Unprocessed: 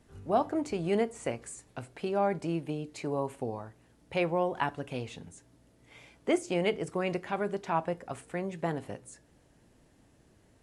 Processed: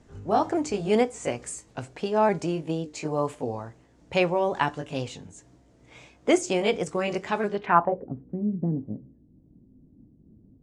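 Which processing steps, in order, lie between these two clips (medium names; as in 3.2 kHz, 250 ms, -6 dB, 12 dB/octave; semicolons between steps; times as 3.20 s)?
sawtooth pitch modulation +1.5 st, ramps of 572 ms; low-pass sweep 6.9 kHz -> 240 Hz, 7.45–8.13 s; tape noise reduction on one side only decoder only; trim +6.5 dB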